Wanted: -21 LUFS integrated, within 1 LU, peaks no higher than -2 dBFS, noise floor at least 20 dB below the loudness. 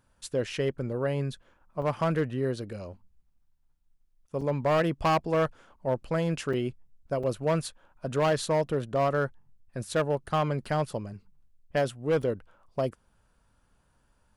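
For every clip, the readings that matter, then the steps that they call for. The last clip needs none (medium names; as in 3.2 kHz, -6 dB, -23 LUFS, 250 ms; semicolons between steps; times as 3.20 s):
clipped samples 1.6%; clipping level -19.5 dBFS; dropouts 5; longest dropout 4.7 ms; loudness -29.5 LUFS; peak level -19.5 dBFS; loudness target -21.0 LUFS
-> clip repair -19.5 dBFS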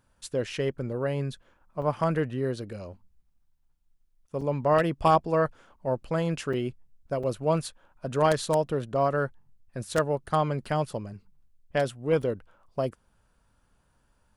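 clipped samples 0.0%; dropouts 5; longest dropout 4.7 ms
-> interpolate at 1.82/4.41/6.53/7.23/12.22 s, 4.7 ms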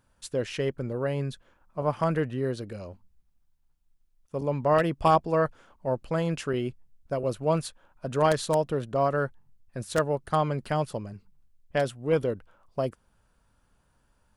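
dropouts 0; loudness -28.5 LUFS; peak level -10.5 dBFS; loudness target -21.0 LUFS
-> trim +7.5 dB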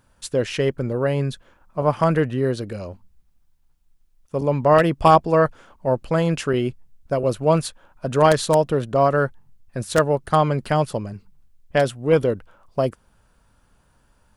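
loudness -21.0 LUFS; peak level -3.0 dBFS; noise floor -61 dBFS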